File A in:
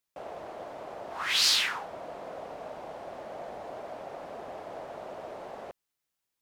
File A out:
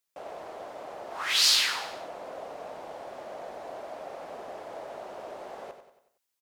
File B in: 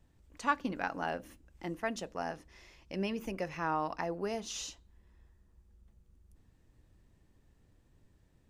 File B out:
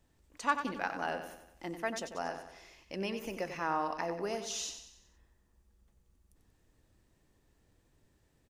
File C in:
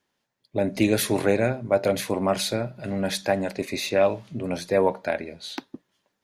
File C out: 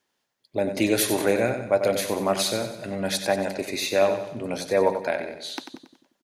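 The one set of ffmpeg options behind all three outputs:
-af "bass=frequency=250:gain=-6,treble=frequency=4000:gain=3,aecho=1:1:93|186|279|372|465:0.355|0.167|0.0784|0.0368|0.0173"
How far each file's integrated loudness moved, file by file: +5.5, 0.0, 0.0 LU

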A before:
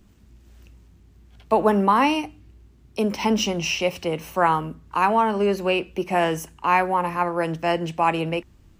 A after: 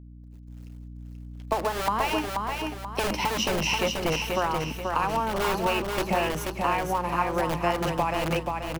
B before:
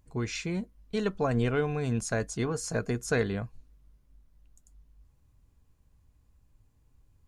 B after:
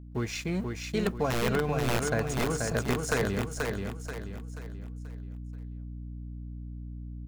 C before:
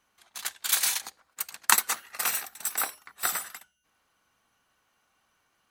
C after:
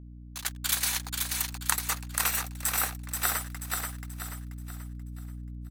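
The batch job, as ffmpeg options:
-filter_complex "[0:a]acrossover=split=420[link_01][link_02];[link_01]aeval=exprs='(mod(14.1*val(0)+1,2)-1)/14.1':channel_layout=same[link_03];[link_03][link_02]amix=inputs=2:normalize=0,adynamicequalizer=threshold=0.00708:dfrequency=7200:dqfactor=0.97:tfrequency=7200:tqfactor=0.97:attack=5:release=100:ratio=0.375:range=2:mode=cutabove:tftype=bell,acompressor=threshold=-24dB:ratio=12,aeval=exprs='sgn(val(0))*max(abs(val(0))-0.00447,0)':channel_layout=same,acrusher=bits=10:mix=0:aa=0.000001,agate=range=-33dB:threshold=-59dB:ratio=3:detection=peak,aeval=exprs='val(0)+0.00501*(sin(2*PI*60*n/s)+sin(2*PI*2*60*n/s)/2+sin(2*PI*3*60*n/s)/3+sin(2*PI*4*60*n/s)/4+sin(2*PI*5*60*n/s)/5)':channel_layout=same,aecho=1:1:483|966|1449|1932|2415:0.631|0.252|0.101|0.0404|0.0162,volume=2dB"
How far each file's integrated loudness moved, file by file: −4.5, −1.5, −2.0 LU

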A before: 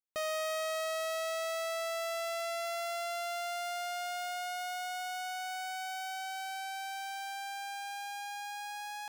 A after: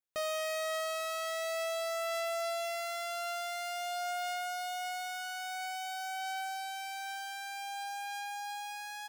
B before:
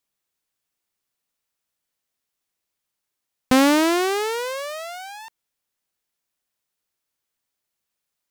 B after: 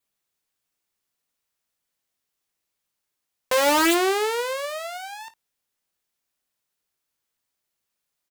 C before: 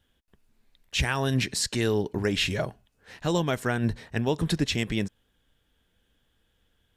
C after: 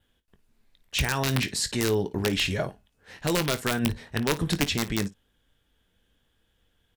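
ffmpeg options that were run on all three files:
-af "adynamicequalizer=threshold=0.00316:dfrequency=5700:dqfactor=6.3:tfrequency=5700:tqfactor=6.3:attack=5:release=100:ratio=0.375:range=2:mode=cutabove:tftype=bell,aeval=exprs='(mod(5.62*val(0)+1,2)-1)/5.62':channel_layout=same,aecho=1:1:21|55:0.251|0.133"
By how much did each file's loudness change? 0.0, −1.5, +0.5 LU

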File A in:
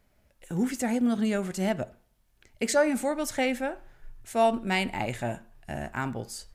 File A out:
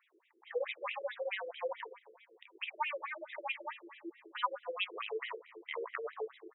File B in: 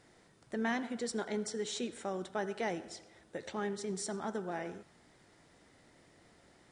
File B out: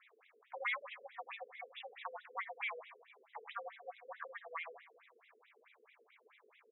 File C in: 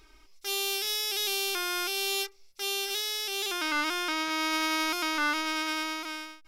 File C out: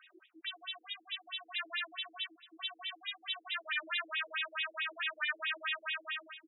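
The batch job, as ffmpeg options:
-filter_complex "[0:a]asplit=2[link_01][link_02];[link_02]acompressor=threshold=-36dB:ratio=6,volume=-2dB[link_03];[link_01][link_03]amix=inputs=2:normalize=0,equalizer=frequency=125:width_type=o:width=1:gain=9,equalizer=frequency=250:width_type=o:width=1:gain=-8,equalizer=frequency=500:width_type=o:width=1:gain=-4,equalizer=frequency=1000:width_type=o:width=1:gain=5,equalizer=frequency=2000:width_type=o:width=1:gain=3,equalizer=frequency=4000:width_type=o:width=1:gain=4,afreqshift=320,crystalizer=i=2:c=0,alimiter=limit=-12.5dB:level=0:latency=1:release=33,asplit=2[link_04][link_05];[link_05]aecho=0:1:263|526|789|1052:0.0891|0.0499|0.0279|0.0157[link_06];[link_04][link_06]amix=inputs=2:normalize=0,aeval=exprs='val(0)+0.00158*(sin(2*PI*60*n/s)+sin(2*PI*2*60*n/s)/2+sin(2*PI*3*60*n/s)/3+sin(2*PI*4*60*n/s)/4+sin(2*PI*5*60*n/s)/5)':channel_layout=same,bandreject=frequency=50:width_type=h:width=6,bandreject=frequency=100:width_type=h:width=6,bandreject=frequency=150:width_type=h:width=6,bandreject=frequency=200:width_type=h:width=6,bandreject=frequency=250:width_type=h:width=6,bandreject=frequency=300:width_type=h:width=6,bandreject=frequency=350:width_type=h:width=6,bandreject=frequency=400:width_type=h:width=6,bandreject=frequency=450:width_type=h:width=6,bandreject=frequency=500:width_type=h:width=6,afftfilt=real='re*between(b*sr/1024,360*pow(2800/360,0.5+0.5*sin(2*PI*4.6*pts/sr))/1.41,360*pow(2800/360,0.5+0.5*sin(2*PI*4.6*pts/sr))*1.41)':imag='im*between(b*sr/1024,360*pow(2800/360,0.5+0.5*sin(2*PI*4.6*pts/sr))/1.41,360*pow(2800/360,0.5+0.5*sin(2*PI*4.6*pts/sr))*1.41)':win_size=1024:overlap=0.75,volume=-6dB"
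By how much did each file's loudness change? −12.0, −7.0, −8.5 LU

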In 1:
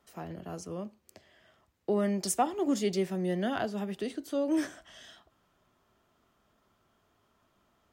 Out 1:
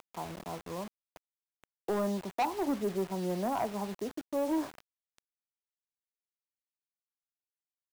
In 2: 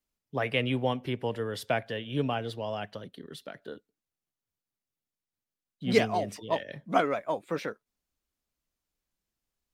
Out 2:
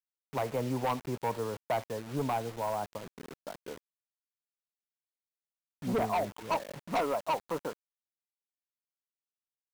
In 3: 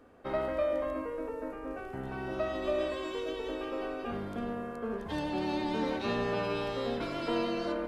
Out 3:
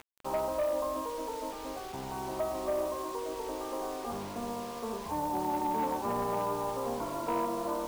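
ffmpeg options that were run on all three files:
-af "aemphasis=mode=reproduction:type=75kf,acompressor=mode=upward:threshold=-49dB:ratio=2.5,lowpass=frequency=970:width_type=q:width=4.9,asoftclip=type=hard:threshold=-21.5dB,acrusher=bits=6:mix=0:aa=0.000001,volume=-3.5dB"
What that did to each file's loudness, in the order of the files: −2.5, −3.0, 0.0 LU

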